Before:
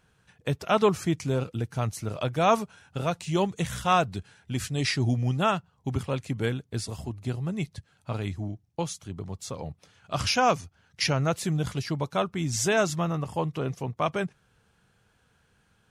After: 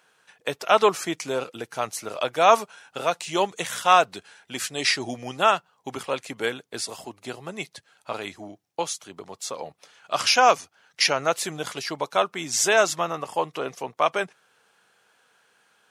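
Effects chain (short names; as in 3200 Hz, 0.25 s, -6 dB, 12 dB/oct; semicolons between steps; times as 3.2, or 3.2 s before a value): HPF 490 Hz 12 dB/oct; gain +6.5 dB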